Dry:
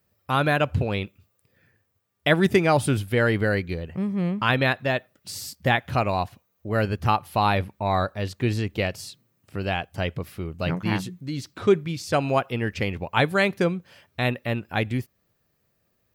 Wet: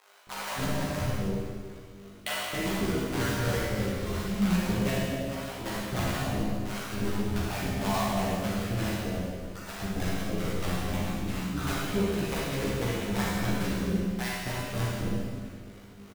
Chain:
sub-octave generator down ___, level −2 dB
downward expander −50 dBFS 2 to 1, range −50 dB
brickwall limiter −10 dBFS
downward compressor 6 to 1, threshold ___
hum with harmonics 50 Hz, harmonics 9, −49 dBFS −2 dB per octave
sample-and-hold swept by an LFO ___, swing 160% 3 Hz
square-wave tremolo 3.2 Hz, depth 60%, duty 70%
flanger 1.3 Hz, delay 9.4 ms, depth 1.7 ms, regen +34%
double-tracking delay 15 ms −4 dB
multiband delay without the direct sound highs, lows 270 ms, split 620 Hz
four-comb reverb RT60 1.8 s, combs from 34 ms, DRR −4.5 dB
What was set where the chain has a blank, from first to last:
2 octaves, −26 dBFS, 29×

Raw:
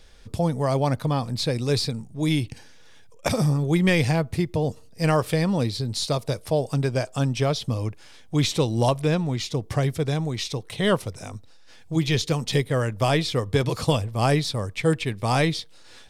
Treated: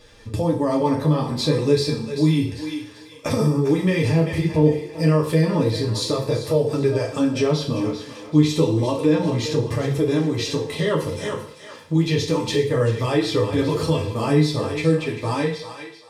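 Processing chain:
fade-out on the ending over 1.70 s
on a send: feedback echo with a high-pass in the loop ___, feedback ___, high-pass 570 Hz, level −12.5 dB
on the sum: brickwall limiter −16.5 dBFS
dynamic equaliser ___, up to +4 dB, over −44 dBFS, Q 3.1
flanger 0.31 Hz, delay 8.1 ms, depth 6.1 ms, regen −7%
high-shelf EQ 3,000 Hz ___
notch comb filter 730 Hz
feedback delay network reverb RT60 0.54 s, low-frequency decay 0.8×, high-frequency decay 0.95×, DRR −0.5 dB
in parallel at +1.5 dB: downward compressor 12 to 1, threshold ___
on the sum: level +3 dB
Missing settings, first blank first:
392 ms, 35%, 390 Hz, −5 dB, −33 dBFS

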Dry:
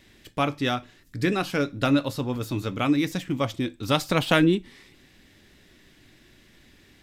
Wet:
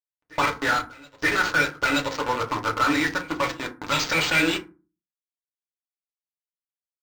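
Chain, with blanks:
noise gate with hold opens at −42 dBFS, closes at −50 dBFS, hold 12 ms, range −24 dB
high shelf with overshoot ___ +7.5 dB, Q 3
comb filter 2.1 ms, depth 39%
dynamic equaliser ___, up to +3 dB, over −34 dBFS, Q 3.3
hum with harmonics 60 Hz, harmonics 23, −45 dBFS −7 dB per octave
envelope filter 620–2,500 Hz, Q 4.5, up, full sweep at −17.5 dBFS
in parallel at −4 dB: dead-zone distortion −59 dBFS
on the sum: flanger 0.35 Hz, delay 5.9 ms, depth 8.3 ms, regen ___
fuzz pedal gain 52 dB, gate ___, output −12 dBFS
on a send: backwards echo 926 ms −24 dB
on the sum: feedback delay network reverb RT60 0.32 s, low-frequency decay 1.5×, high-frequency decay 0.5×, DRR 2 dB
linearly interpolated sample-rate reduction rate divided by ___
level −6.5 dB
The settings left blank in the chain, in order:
3,800 Hz, 530 Hz, −85%, −49 dBFS, 4×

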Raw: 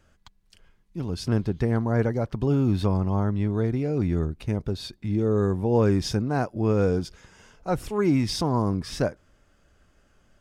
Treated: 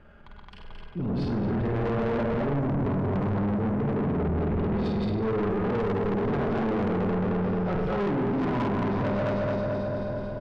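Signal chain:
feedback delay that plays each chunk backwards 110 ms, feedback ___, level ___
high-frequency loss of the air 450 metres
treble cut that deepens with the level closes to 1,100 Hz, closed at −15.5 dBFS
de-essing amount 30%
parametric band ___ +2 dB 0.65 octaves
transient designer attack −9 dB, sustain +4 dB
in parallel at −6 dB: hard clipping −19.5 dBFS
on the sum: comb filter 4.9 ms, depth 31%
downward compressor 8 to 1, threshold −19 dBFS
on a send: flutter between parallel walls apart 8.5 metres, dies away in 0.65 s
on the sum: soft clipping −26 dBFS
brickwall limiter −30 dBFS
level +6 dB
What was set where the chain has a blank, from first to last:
79%, −2 dB, 910 Hz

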